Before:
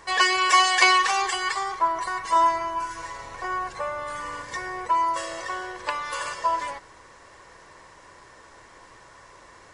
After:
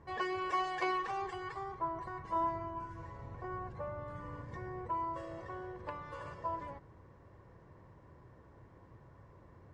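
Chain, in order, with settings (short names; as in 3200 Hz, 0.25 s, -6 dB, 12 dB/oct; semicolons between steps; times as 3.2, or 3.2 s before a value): band-pass 110 Hz, Q 1.2; gain +6 dB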